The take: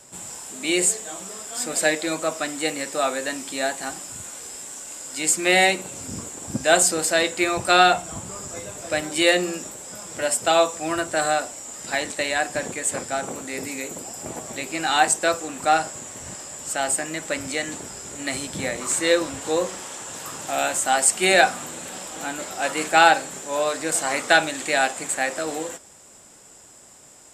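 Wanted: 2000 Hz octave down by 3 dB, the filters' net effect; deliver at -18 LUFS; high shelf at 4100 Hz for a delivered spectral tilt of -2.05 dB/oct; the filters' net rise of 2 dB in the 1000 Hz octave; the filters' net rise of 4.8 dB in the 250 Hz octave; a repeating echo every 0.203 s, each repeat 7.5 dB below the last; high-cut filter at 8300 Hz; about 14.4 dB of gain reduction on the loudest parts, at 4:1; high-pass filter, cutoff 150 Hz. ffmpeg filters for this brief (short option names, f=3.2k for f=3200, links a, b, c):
-af "highpass=150,lowpass=8.3k,equalizer=f=250:t=o:g=7.5,equalizer=f=1k:t=o:g=3.5,equalizer=f=2k:t=o:g=-7,highshelf=f=4.1k:g=5.5,acompressor=threshold=-27dB:ratio=4,aecho=1:1:203|406|609|812|1015:0.422|0.177|0.0744|0.0312|0.0131,volume=11dB"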